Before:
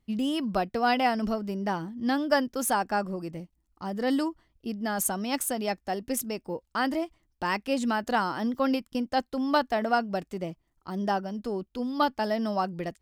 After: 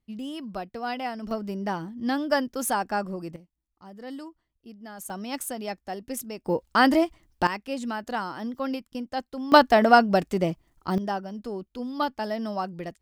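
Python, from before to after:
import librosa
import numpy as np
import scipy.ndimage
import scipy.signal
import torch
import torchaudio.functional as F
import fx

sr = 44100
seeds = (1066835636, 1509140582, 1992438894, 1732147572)

y = fx.gain(x, sr, db=fx.steps((0.0, -7.0), (1.31, 0.0), (3.36, -12.0), (5.1, -3.5), (6.46, 8.5), (7.47, -4.0), (9.52, 9.0), (10.98, -2.0)))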